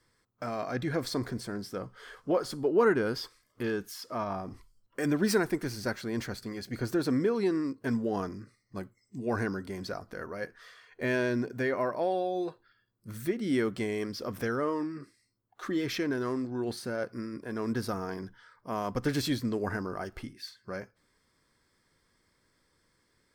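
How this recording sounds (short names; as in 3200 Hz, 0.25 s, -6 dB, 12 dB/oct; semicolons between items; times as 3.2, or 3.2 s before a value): noise floor -73 dBFS; spectral tilt -5.0 dB/oct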